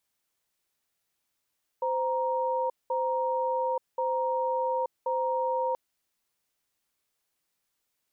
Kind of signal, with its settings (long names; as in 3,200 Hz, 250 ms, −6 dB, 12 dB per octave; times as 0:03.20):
tone pair in a cadence 517 Hz, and 937 Hz, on 0.88 s, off 0.20 s, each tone −28 dBFS 3.93 s